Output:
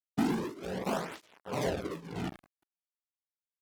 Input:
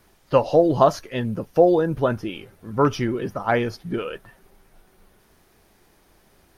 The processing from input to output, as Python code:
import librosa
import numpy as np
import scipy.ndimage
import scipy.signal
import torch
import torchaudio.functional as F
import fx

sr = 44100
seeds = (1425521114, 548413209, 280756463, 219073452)

p1 = fx.peak_eq(x, sr, hz=150.0, db=-10.0, octaves=0.27)
p2 = p1 * np.sin(2.0 * np.pi * 300.0 * np.arange(len(p1)) / sr)
p3 = fx.low_shelf_res(p2, sr, hz=520.0, db=12.5, q=1.5)
p4 = fx.hum_notches(p3, sr, base_hz=50, count=8)
p5 = fx.level_steps(p4, sr, step_db=22)
p6 = p4 + F.gain(torch.from_numpy(p5), 0.0).numpy()
p7 = fx.highpass(p6, sr, hz=90.0, slope=6)
p8 = p7 + fx.echo_feedback(p7, sr, ms=95, feedback_pct=49, wet_db=-10, dry=0)
p9 = fx.fuzz(p8, sr, gain_db=30.0, gate_db=-28.0)
p10 = fx.tremolo_shape(p9, sr, shape='triangle', hz=0.75, depth_pct=95)
p11 = fx.stretch_grains(p10, sr, factor=0.55, grain_ms=38.0)
p12 = fx.flanger_cancel(p11, sr, hz=0.41, depth_ms=2.2)
y = F.gain(torch.from_numpy(p12), -9.0).numpy()